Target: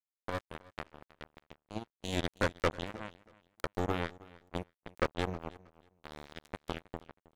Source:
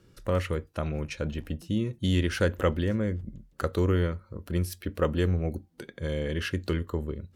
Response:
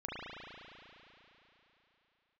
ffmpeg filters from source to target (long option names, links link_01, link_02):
-filter_complex "[0:a]asplit=2[link_01][link_02];[link_02]asoftclip=type=tanh:threshold=-22dB,volume=-8dB[link_03];[link_01][link_03]amix=inputs=2:normalize=0,acrusher=bits=2:mix=0:aa=0.5,aecho=1:1:318|636:0.0891|0.0205,volume=-6dB"